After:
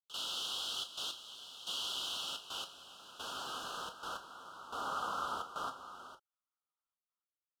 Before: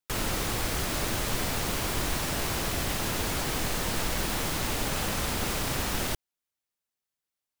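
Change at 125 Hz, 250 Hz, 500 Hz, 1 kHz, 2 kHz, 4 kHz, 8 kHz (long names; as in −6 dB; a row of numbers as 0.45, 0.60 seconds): −31.5, −23.5, −16.5, −7.0, −16.0, −5.0, −16.0 decibels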